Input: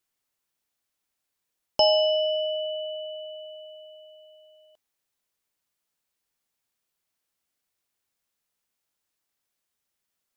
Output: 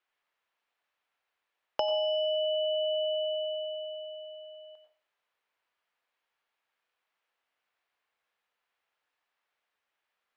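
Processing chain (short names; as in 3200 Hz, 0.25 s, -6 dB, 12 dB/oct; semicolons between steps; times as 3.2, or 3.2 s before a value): on a send at -3 dB: reverb RT60 0.35 s, pre-delay 82 ms; on the sum: compressor 12:1, threshold -29 dBFS, peak gain reduction 16 dB; three-band isolator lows -18 dB, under 470 Hz, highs -24 dB, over 3200 Hz; gain +5.5 dB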